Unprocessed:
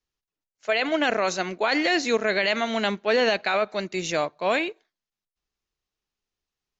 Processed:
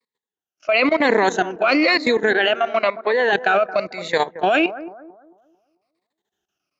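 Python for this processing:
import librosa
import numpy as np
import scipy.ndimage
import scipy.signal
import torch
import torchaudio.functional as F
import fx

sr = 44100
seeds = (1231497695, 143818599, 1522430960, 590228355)

p1 = fx.spec_ripple(x, sr, per_octave=0.97, drift_hz=-1.0, depth_db=16)
p2 = scipy.signal.sosfilt(scipy.signal.butter(2, 180.0, 'highpass', fs=sr, output='sos'), p1)
p3 = fx.high_shelf(p2, sr, hz=4700.0, db=-9.0)
p4 = fx.over_compress(p3, sr, threshold_db=-22.0, ratio=-0.5)
p5 = p3 + (p4 * librosa.db_to_amplitude(2.5))
p6 = fx.vibrato(p5, sr, rate_hz=0.95, depth_cents=8.1)
p7 = fx.level_steps(p6, sr, step_db=16)
p8 = fx.bass_treble(p7, sr, bass_db=-15, treble_db=-11, at=(2.32, 3.33))
y = p8 + fx.echo_bbd(p8, sr, ms=222, stages=2048, feedback_pct=36, wet_db=-14, dry=0)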